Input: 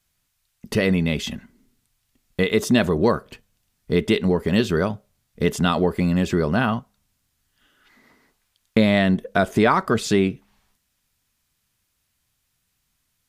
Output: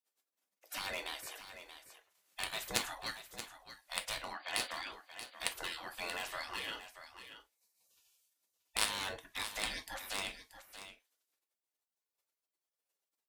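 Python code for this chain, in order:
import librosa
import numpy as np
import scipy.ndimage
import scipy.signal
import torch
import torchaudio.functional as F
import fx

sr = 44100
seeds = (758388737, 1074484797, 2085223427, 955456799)

p1 = fx.spec_gate(x, sr, threshold_db=-25, keep='weak')
p2 = fx.brickwall_bandpass(p1, sr, low_hz=200.0, high_hz=4800.0, at=(4.33, 4.92))
p3 = (np.mod(10.0 ** (24.5 / 20.0) * p2 + 1.0, 2.0) - 1.0) / 10.0 ** (24.5 / 20.0)
p4 = p2 + (p3 * 10.0 ** (-10.0 / 20.0))
p5 = fx.cheby_harmonics(p4, sr, harmonics=(3,), levels_db=(-7,), full_scale_db=-14.5)
p6 = p5 + fx.echo_single(p5, sr, ms=631, db=-11.5, dry=0)
p7 = fx.rev_gated(p6, sr, seeds[0], gate_ms=80, shape='falling', drr_db=6.5)
y = p7 * 10.0 ** (6.0 / 20.0)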